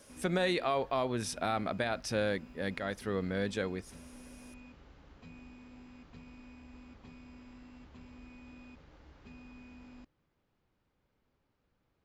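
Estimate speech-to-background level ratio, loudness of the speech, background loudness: 20.0 dB, -34.0 LUFS, -54.0 LUFS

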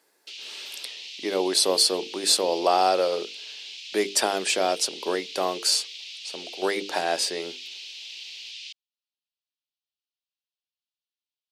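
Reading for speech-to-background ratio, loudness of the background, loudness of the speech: 13.0 dB, -37.0 LUFS, -24.0 LUFS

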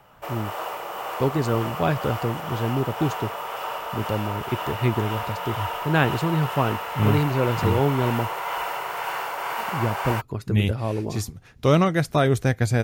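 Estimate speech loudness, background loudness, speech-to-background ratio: -25.0 LUFS, -30.0 LUFS, 5.0 dB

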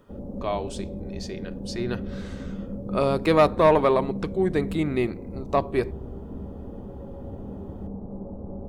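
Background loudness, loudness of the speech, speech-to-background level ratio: -36.0 LUFS, -24.5 LUFS, 11.5 dB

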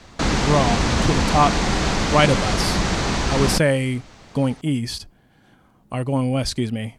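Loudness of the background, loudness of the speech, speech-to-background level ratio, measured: -21.5 LUFS, -22.5 LUFS, -1.0 dB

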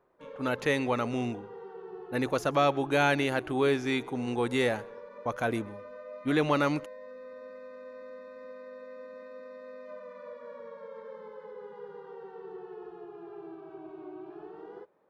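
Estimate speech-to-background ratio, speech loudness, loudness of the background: 16.5 dB, -29.0 LUFS, -45.5 LUFS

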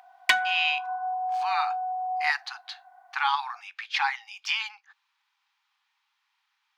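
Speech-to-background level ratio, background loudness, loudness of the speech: -0.5 dB, -28.5 LUFS, -29.0 LUFS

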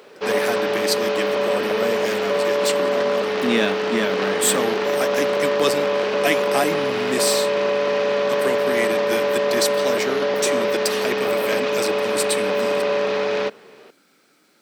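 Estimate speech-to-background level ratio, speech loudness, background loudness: -5.0 dB, -26.0 LUFS, -21.0 LUFS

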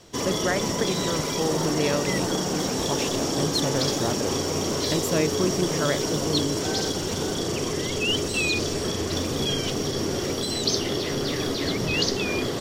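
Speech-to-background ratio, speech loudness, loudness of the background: -4.0 dB, -29.5 LUFS, -25.5 LUFS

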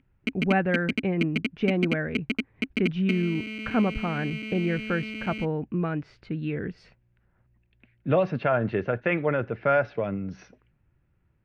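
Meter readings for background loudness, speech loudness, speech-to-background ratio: -32.5 LUFS, -28.0 LUFS, 4.5 dB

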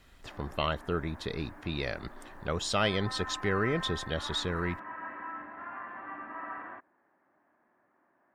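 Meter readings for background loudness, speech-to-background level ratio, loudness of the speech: -42.5 LUFS, 9.5 dB, -33.0 LUFS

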